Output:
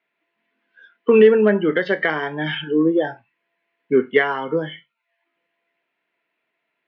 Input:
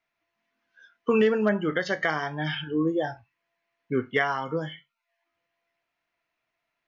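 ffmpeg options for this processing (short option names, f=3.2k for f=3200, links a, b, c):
-af "acontrast=83,highpass=f=170:w=0.5412,highpass=f=170:w=1.3066,equalizer=f=410:t=q:w=4:g=6,equalizer=f=730:t=q:w=4:g=-5,equalizer=f=1.2k:t=q:w=4:g=-6,lowpass=f=3.4k:w=0.5412,lowpass=f=3.4k:w=1.3066"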